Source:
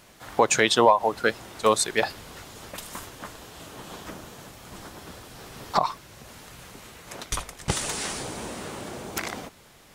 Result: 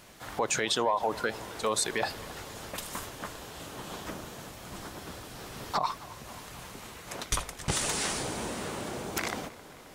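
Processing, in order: peak limiter -17.5 dBFS, peak gain reduction 11 dB; on a send: tape echo 268 ms, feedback 87%, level -17 dB, low-pass 2.4 kHz

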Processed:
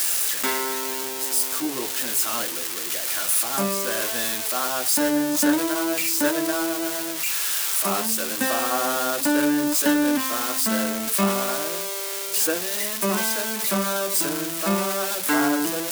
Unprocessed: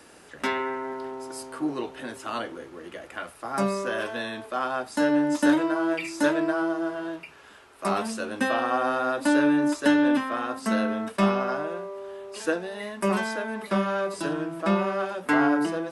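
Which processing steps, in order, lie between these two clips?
zero-crossing glitches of -14.5 dBFS; hum notches 50/100/150 Hz

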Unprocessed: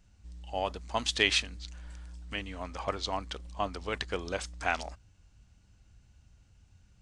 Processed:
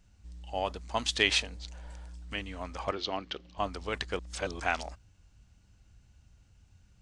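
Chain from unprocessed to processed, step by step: 1.31–2.08 s: time-frequency box 420–1000 Hz +8 dB; 2.91–3.58 s: cabinet simulation 120–5200 Hz, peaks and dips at 360 Hz +7 dB, 980 Hz -5 dB, 2.9 kHz +5 dB; 4.19–4.60 s: reverse

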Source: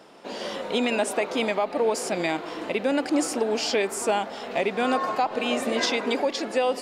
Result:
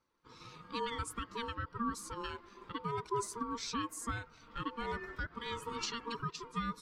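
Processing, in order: expander on every frequency bin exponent 1.5; peaking EQ 1.2 kHz -6.5 dB 1.6 oct; ring modulator 700 Hz; trim -7 dB

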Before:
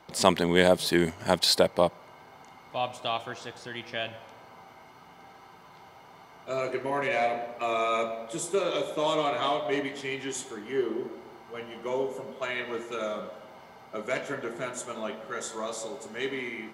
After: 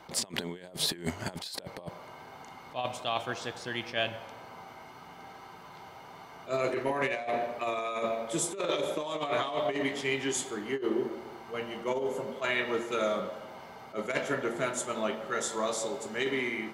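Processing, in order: compressor with a negative ratio -30 dBFS, ratio -0.5; attacks held to a fixed rise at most 260 dB/s

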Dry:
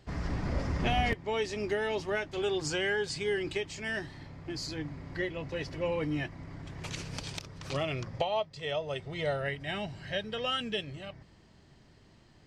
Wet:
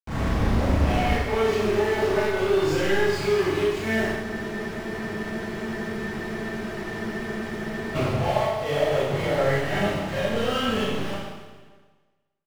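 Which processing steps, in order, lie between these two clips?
companded quantiser 2-bit; low-pass 1.4 kHz 6 dB/octave; echo from a far wall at 100 m, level -26 dB; Schroeder reverb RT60 1.3 s, combs from 28 ms, DRR -9.5 dB; spectral freeze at 4.24 s, 3.72 s; trim -4 dB

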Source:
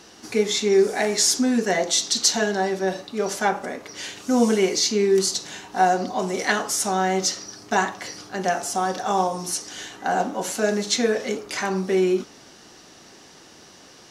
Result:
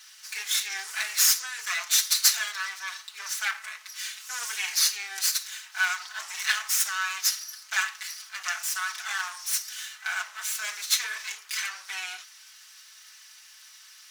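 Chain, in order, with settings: comb filter that takes the minimum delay 4.6 ms; high-pass 1.4 kHz 24 dB/octave; treble shelf 9.9 kHz +5 dB

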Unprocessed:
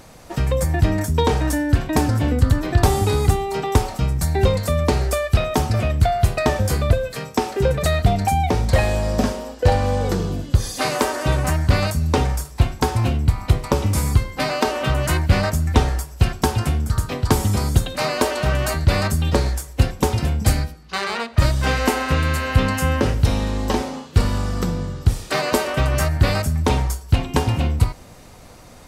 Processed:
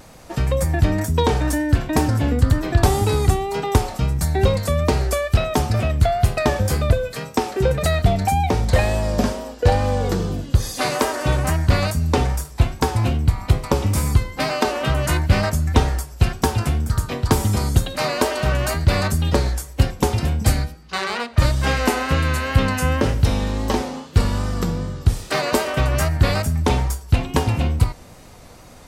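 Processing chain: wow and flutter 45 cents

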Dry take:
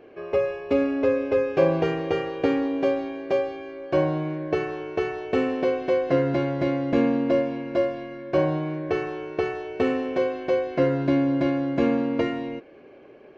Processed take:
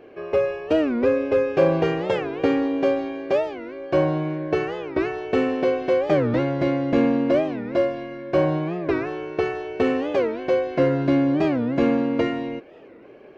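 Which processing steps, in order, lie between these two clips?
in parallel at -9.5 dB: overload inside the chain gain 18 dB; on the sum: warped record 45 rpm, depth 250 cents

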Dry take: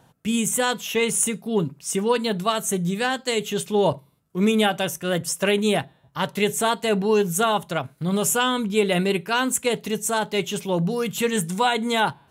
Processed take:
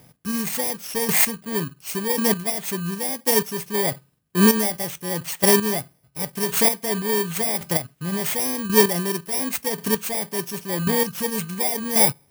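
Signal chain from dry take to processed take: bit-reversed sample order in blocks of 32 samples; square tremolo 0.92 Hz, depth 60%, duty 15%; trim +5 dB

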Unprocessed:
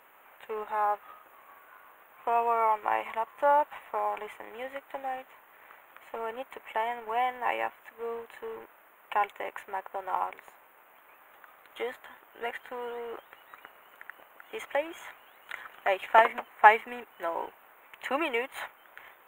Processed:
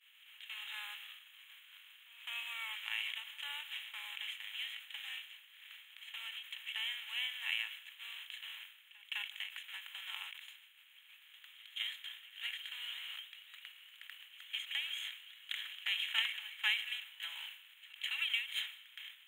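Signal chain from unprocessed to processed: spectral levelling over time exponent 0.6; expander -31 dBFS; ladder high-pass 3 kHz, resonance 70%; pre-echo 208 ms -20 dB; reverberation RT60 0.50 s, pre-delay 108 ms, DRR 19.5 dB; endings held to a fixed fall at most 130 dB/s; trim +7.5 dB

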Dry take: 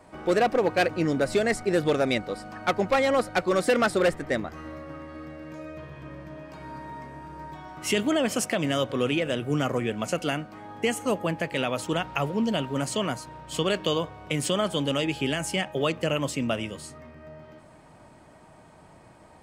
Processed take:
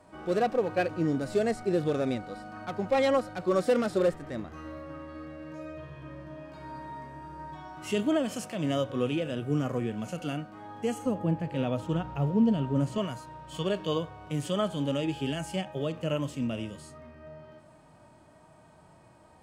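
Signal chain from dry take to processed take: peaking EQ 2.1 kHz -4.5 dB 0.38 oct; harmonic-percussive split percussive -14 dB; 11.06–12.98 s: tilt EQ -2 dB/octave; trim -1 dB

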